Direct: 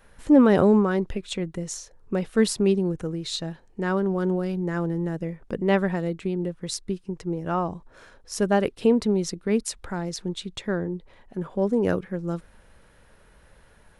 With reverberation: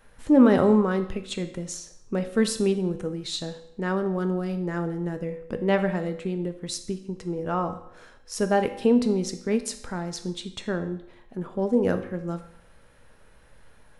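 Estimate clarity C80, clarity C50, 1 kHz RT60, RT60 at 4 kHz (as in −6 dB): 13.5 dB, 11.0 dB, 0.75 s, 0.70 s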